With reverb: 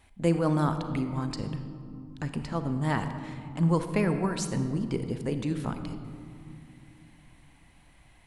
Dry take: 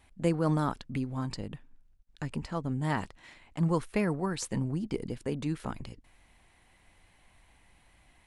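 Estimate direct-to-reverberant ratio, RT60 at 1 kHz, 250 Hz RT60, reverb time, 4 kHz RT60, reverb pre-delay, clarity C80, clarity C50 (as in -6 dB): 8.0 dB, 2.2 s, 4.0 s, 2.4 s, 1.1 s, 33 ms, 9.5 dB, 8.5 dB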